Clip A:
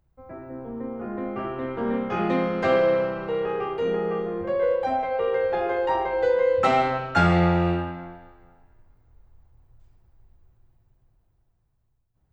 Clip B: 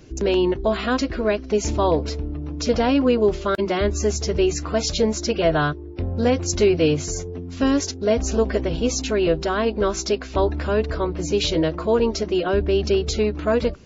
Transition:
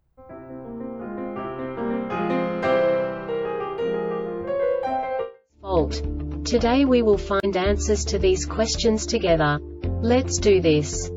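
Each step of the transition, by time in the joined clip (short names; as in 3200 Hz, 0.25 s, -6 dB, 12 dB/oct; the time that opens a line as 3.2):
clip A
5.48 switch to clip B from 1.63 s, crossfade 0.54 s exponential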